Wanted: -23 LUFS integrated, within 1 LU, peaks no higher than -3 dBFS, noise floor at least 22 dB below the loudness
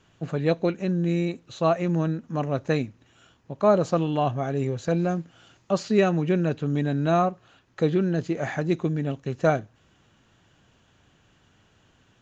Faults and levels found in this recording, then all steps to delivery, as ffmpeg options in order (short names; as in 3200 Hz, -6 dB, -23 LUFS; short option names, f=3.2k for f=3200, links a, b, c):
loudness -25.0 LUFS; peak -7.5 dBFS; loudness target -23.0 LUFS
-> -af "volume=2dB"